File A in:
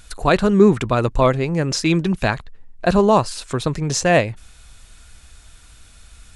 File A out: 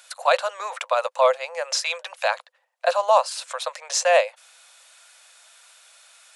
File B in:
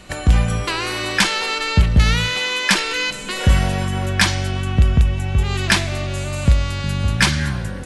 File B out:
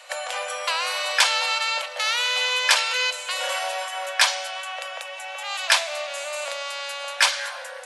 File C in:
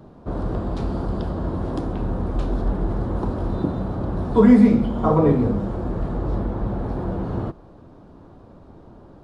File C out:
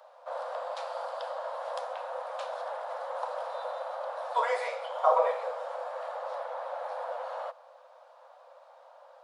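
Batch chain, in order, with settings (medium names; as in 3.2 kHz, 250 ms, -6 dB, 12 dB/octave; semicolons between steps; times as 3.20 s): Chebyshev high-pass 510 Hz, order 8; dynamic bell 1.9 kHz, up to -4 dB, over -35 dBFS, Q 2.8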